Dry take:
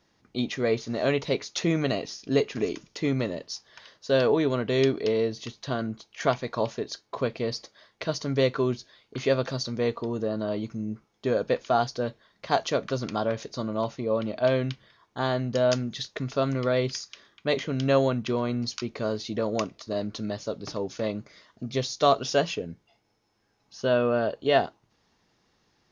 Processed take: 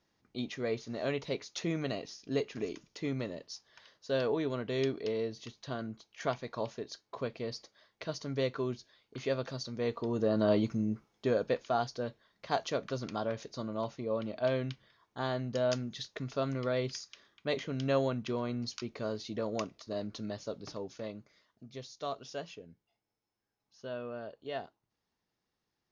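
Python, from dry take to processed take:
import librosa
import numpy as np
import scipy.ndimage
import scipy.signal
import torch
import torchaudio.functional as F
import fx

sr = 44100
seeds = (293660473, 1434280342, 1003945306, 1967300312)

y = fx.gain(x, sr, db=fx.line((9.72, -9.0), (10.51, 3.0), (11.7, -7.5), (20.55, -7.5), (21.64, -17.0)))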